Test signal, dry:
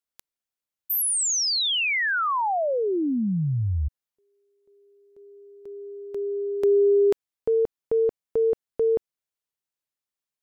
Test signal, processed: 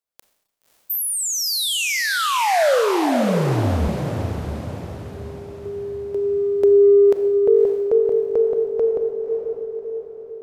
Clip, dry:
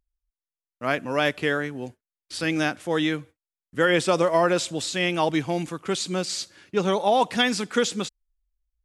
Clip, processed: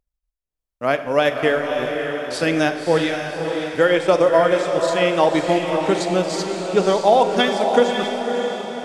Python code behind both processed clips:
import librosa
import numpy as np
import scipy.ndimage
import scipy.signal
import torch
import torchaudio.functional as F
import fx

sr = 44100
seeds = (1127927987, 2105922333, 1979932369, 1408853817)

y = fx.peak_eq(x, sr, hz=580.0, db=6.5, octaves=1.2)
y = fx.transient(y, sr, attack_db=2, sustain_db=-10)
y = fx.rider(y, sr, range_db=4, speed_s=2.0)
y = fx.echo_diffused(y, sr, ms=573, feedback_pct=50, wet_db=-5)
y = fx.rev_schroeder(y, sr, rt60_s=0.98, comb_ms=29, drr_db=10.5)